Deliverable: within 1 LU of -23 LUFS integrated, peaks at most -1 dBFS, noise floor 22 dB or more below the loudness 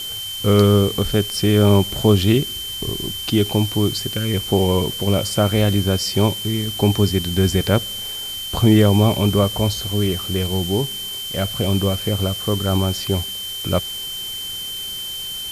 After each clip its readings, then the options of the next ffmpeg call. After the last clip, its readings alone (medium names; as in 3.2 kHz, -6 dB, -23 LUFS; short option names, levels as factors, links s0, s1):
steady tone 3.1 kHz; tone level -27 dBFS; noise floor -29 dBFS; noise floor target -41 dBFS; loudness -19.0 LUFS; peak level -3.0 dBFS; loudness target -23.0 LUFS
-> -af "bandreject=f=3100:w=30"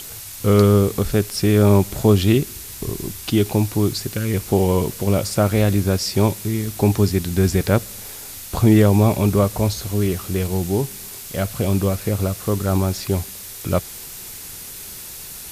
steady tone not found; noise floor -35 dBFS; noise floor target -42 dBFS
-> -af "afftdn=nr=7:nf=-35"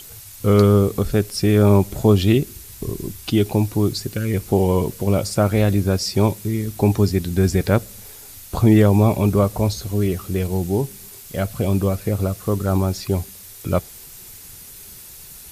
noise floor -41 dBFS; noise floor target -42 dBFS
-> -af "afftdn=nr=6:nf=-41"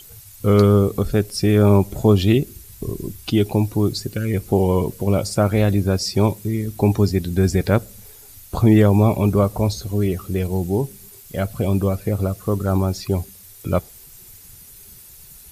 noise floor -44 dBFS; loudness -19.5 LUFS; peak level -4.0 dBFS; loudness target -23.0 LUFS
-> -af "volume=0.668"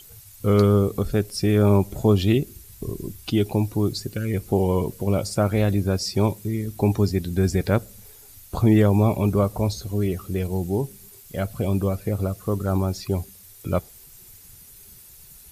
loudness -23.0 LUFS; peak level -7.5 dBFS; noise floor -47 dBFS